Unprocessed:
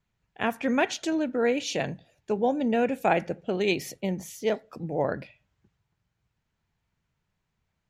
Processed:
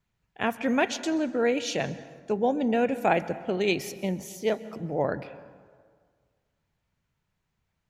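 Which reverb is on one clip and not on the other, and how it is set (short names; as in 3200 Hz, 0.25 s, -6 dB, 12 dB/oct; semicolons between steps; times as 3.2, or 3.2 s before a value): plate-style reverb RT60 1.8 s, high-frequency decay 0.5×, pre-delay 0.115 s, DRR 15.5 dB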